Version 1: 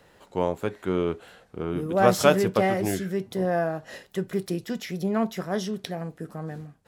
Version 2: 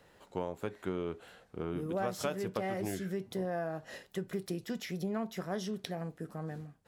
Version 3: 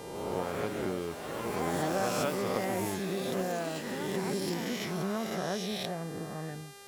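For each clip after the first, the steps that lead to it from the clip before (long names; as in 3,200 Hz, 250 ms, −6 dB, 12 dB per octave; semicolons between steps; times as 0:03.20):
downward compressor 6 to 1, threshold −26 dBFS, peak gain reduction 13 dB; level −5.5 dB
peak hold with a rise ahead of every peak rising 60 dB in 1.66 s; hum with harmonics 400 Hz, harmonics 32, −51 dBFS −3 dB per octave; delay with pitch and tempo change per echo 151 ms, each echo +5 semitones, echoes 3, each echo −6 dB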